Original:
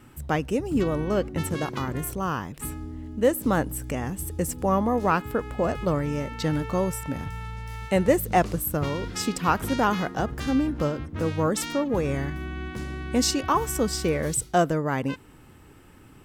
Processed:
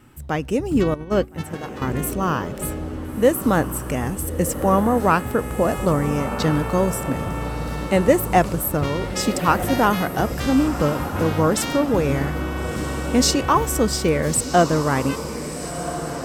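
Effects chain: 0.94–1.82 gate -24 dBFS, range -13 dB; AGC gain up to 5.5 dB; diffused feedback echo 1.373 s, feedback 53%, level -10 dB

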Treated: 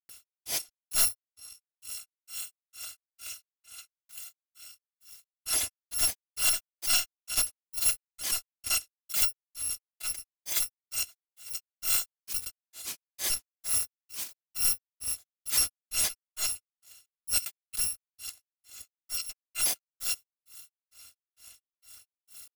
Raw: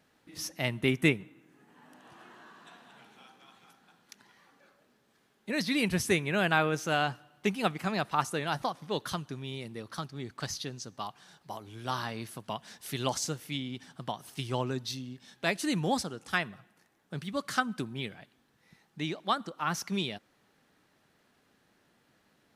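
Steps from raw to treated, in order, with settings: FFT order left unsorted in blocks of 256 samples; high shelf 2200 Hz +11.5 dB; in parallel at -1 dB: compressor, threshold -45 dBFS, peak gain reduction 32.5 dB; on the sum: soft clip -24.5 dBFS, distortion -4 dB; grains 0.246 s, grains 2.2/s, pitch spread up and down by 0 st; backwards sustainer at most 140 dB/s; gain +6 dB

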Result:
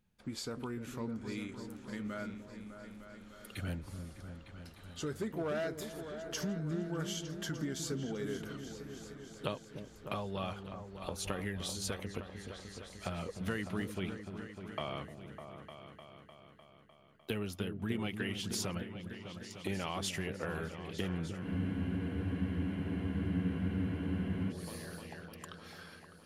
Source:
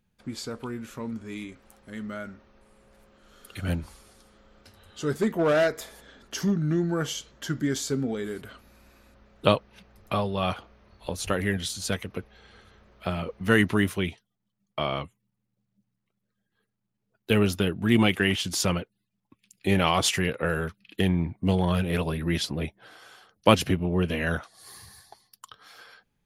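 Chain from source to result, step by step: compressor 4:1, threshold -32 dBFS, peak gain reduction 17 dB; repeats that get brighter 0.302 s, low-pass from 400 Hz, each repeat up 2 oct, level -6 dB; spectral freeze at 21.46, 3.04 s; gain -4 dB

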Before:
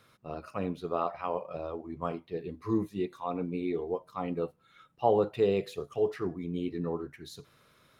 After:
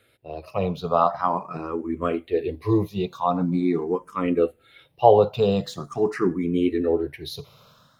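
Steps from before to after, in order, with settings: AGC gain up to 10 dB; endless phaser +0.44 Hz; gain +3.5 dB

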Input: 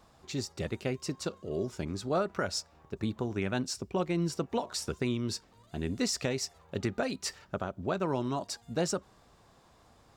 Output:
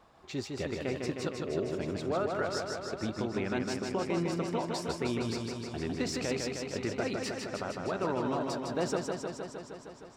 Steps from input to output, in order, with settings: tone controls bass -6 dB, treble -10 dB; limiter -24.5 dBFS, peak gain reduction 5.5 dB; warbling echo 0.155 s, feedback 75%, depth 64 cents, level -4 dB; gain +1.5 dB

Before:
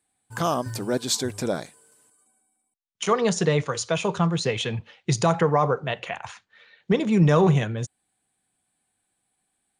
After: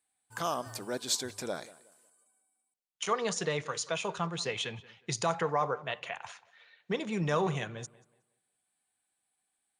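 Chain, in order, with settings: low shelf 410 Hz -11 dB; tape echo 0.183 s, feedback 32%, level -18.5 dB, low-pass 2800 Hz; gain -5.5 dB

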